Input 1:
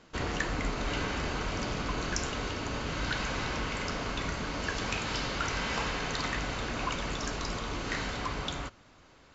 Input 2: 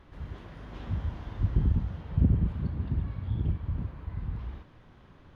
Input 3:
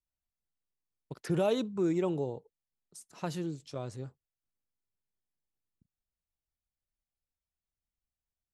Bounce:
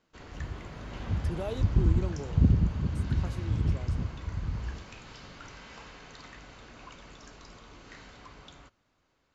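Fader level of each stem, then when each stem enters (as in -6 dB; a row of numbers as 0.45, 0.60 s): -15.5, +1.5, -7.5 dB; 0.00, 0.20, 0.00 s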